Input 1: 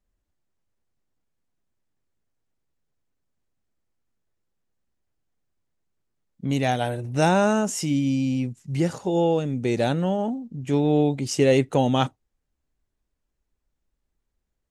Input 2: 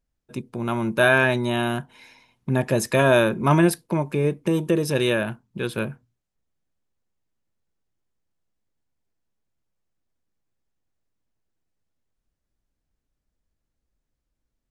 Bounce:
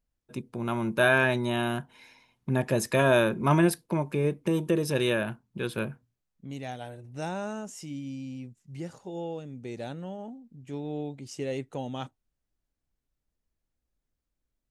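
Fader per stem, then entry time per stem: -14.5, -4.5 dB; 0.00, 0.00 s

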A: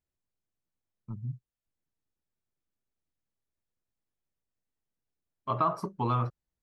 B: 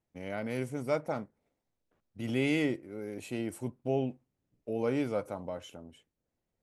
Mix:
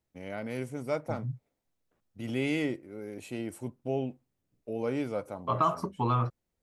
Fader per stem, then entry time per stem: +1.0, -1.0 dB; 0.00, 0.00 s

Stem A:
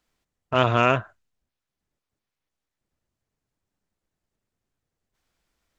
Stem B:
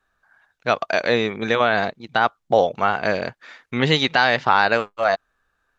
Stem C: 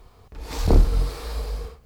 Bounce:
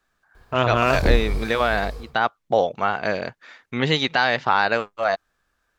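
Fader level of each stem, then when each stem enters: -0.5, -2.5, -3.0 dB; 0.00, 0.00, 0.35 s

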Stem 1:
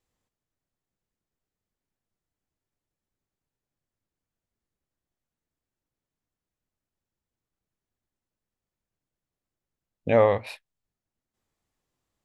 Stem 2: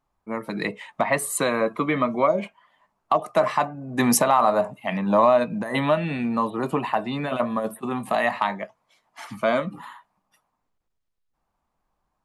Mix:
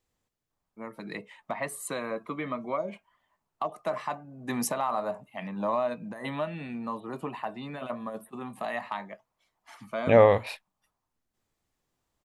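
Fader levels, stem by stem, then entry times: +1.5, -11.0 dB; 0.00, 0.50 s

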